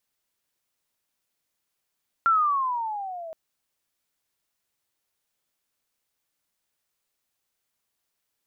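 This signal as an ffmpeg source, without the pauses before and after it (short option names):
-f lavfi -i "aevalsrc='pow(10,(-16-19*t/1.07)/20)*sin(2*PI*1380*1.07/(-13.5*log(2)/12)*(exp(-13.5*log(2)/12*t/1.07)-1))':d=1.07:s=44100"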